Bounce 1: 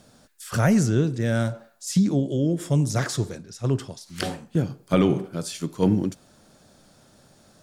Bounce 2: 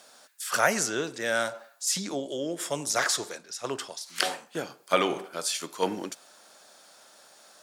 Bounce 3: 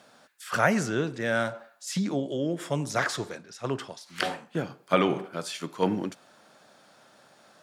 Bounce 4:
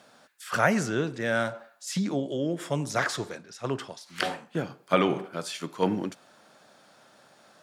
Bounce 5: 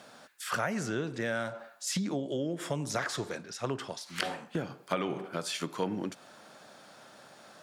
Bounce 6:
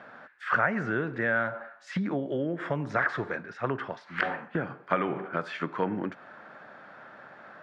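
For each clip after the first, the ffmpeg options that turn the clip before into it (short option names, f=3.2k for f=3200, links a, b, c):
-af "highpass=720,volume=5dB"
-af "bass=f=250:g=13,treble=f=4k:g=-11"
-af anull
-af "acompressor=threshold=-34dB:ratio=4,volume=3.5dB"
-af "lowpass=f=1.7k:t=q:w=2.2,volume=2.5dB"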